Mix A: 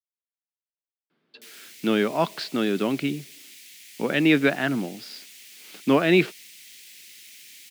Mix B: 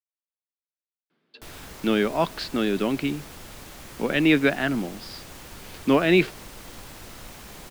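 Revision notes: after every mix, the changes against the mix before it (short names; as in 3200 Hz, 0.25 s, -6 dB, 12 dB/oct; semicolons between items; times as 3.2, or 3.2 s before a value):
background: remove steep high-pass 2000 Hz 48 dB/oct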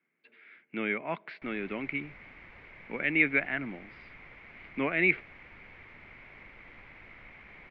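speech: entry -1.10 s; master: add ladder low-pass 2300 Hz, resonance 80%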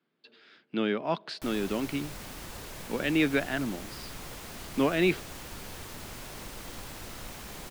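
speech -6.5 dB; master: remove ladder low-pass 2300 Hz, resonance 80%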